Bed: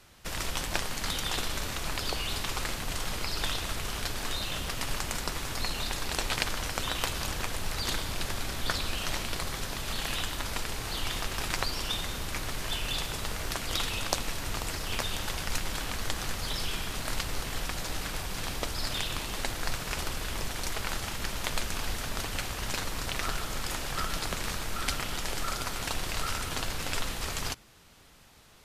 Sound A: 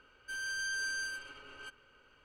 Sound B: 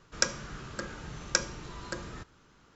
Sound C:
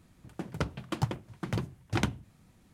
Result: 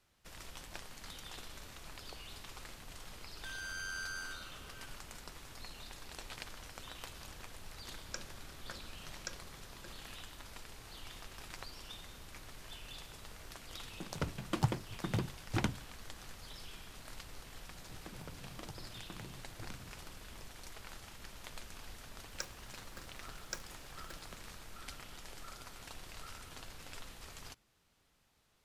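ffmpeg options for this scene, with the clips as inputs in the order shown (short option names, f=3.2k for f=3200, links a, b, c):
-filter_complex "[2:a]asplit=2[a][b];[3:a]asplit=2[c][d];[0:a]volume=-17dB[e];[1:a]asplit=8[f][g][h][i][j][k][l][m];[g]adelay=82,afreqshift=-89,volume=-7.5dB[n];[h]adelay=164,afreqshift=-178,volume=-12.2dB[o];[i]adelay=246,afreqshift=-267,volume=-17dB[p];[j]adelay=328,afreqshift=-356,volume=-21.7dB[q];[k]adelay=410,afreqshift=-445,volume=-26.4dB[r];[l]adelay=492,afreqshift=-534,volume=-31.2dB[s];[m]adelay=574,afreqshift=-623,volume=-35.9dB[t];[f][n][o][p][q][r][s][t]amix=inputs=8:normalize=0[u];[c]dynaudnorm=f=120:g=11:m=11.5dB[v];[d]acompressor=threshold=-44dB:ratio=6:attack=3.2:release=140:knee=1:detection=peak[w];[b]acrusher=bits=6:dc=4:mix=0:aa=0.000001[x];[u]atrim=end=2.24,asetpts=PTS-STARTPTS,volume=-7dB,afade=t=in:d=0.004:c=hsin,afade=t=out:st=2.236:d=0.004:c=hsin,adelay=3160[y];[a]atrim=end=2.75,asetpts=PTS-STARTPTS,volume=-17.5dB,afade=t=in:d=0.004:c=hsin,afade=t=out:st=2.746:d=0.004:c=hsin,adelay=7920[z];[v]atrim=end=2.73,asetpts=PTS-STARTPTS,volume=-11.5dB,afade=t=in:d=0.004:c=hsin,afade=t=out:st=2.726:d=0.004:c=hsin,adelay=13610[aa];[w]atrim=end=2.73,asetpts=PTS-STARTPTS,volume=-2.5dB,afade=t=in:d=0.004:c=hsin,afade=t=out:st=2.726:d=0.004:c=hsin,adelay=17670[ab];[x]atrim=end=2.75,asetpts=PTS-STARTPTS,volume=-16dB,afade=t=in:d=0.004:c=hsin,afade=t=out:st=2.746:d=0.004:c=hsin,adelay=22180[ac];[e][y][z][aa][ab][ac]amix=inputs=6:normalize=0"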